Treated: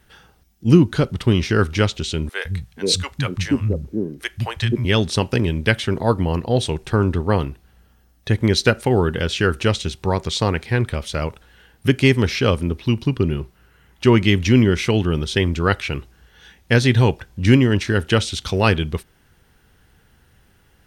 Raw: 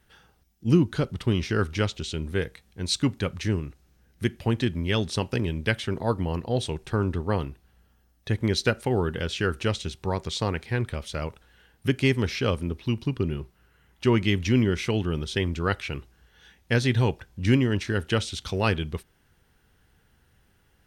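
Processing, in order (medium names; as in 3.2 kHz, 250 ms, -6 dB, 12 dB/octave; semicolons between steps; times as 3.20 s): 2.29–4.85 s: three bands offset in time highs, lows, mids 160/480 ms, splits 170/590 Hz; trim +7.5 dB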